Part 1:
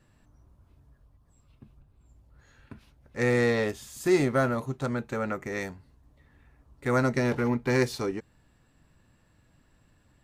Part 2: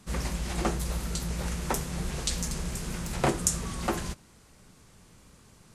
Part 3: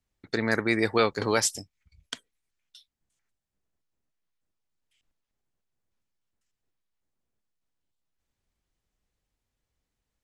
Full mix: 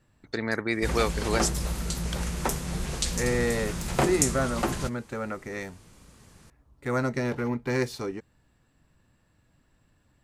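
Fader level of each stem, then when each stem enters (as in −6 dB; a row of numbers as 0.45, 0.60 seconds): −2.5, +1.5, −3.0 decibels; 0.00, 0.75, 0.00 seconds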